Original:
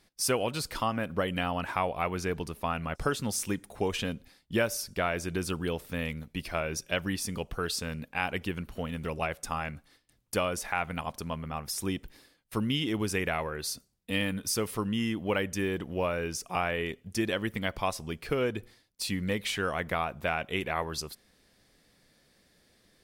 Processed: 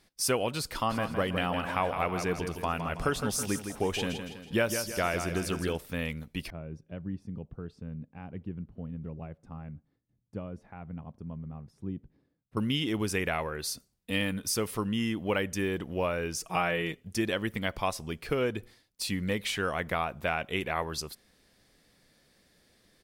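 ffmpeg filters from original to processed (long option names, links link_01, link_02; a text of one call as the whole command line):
ffmpeg -i in.wav -filter_complex "[0:a]asplit=3[link_01][link_02][link_03];[link_01]afade=type=out:start_time=0.89:duration=0.02[link_04];[link_02]aecho=1:1:162|324|486|648|810:0.422|0.19|0.0854|0.0384|0.0173,afade=type=in:start_time=0.89:duration=0.02,afade=type=out:start_time=5.76:duration=0.02[link_05];[link_03]afade=type=in:start_time=5.76:duration=0.02[link_06];[link_04][link_05][link_06]amix=inputs=3:normalize=0,asettb=1/sr,asplit=3[link_07][link_08][link_09];[link_07]atrim=end=6.504[link_10];[link_08]atrim=start=6.5:end=12.57,asetpts=PTS-STARTPTS,afade=type=in:duration=0.004:curve=qsin,afade=type=out:start_time=6.066:duration=0.004:curve=qsin,bandpass=frequency=140:width_type=q:width=1.1[link_11];[link_09]atrim=start=12.566[link_12];[link_10][link_11]acrossfade=duration=0.004:curve1=hsin:curve2=qsin[link_13];[link_13][link_12]acrossfade=duration=0.004:curve1=qsin:curve2=hsin,asettb=1/sr,asplit=3[link_14][link_15][link_16];[link_14]atrim=end=16.364[link_17];[link_15]atrim=start=16.36:end=16.97,asetpts=PTS-STARTPTS,afade=type=in:duration=0.004:curve=qsin,afade=type=out:start_time=0.606:duration=0.004:curve=qsin,aecho=1:1:6.3:0.65,atrim=end_sample=26901[link_18];[link_16]atrim=start=16.966[link_19];[link_17][link_18]acrossfade=duration=0.004:curve1=hsin:curve2=qsin[link_20];[link_20][link_19]acrossfade=duration=0.004:curve1=qsin:curve2=hsin" out.wav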